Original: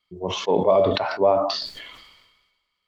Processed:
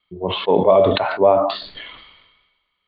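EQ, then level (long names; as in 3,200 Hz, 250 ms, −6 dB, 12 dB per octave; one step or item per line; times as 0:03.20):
Butterworth low-pass 4,100 Hz 72 dB per octave
+4.5 dB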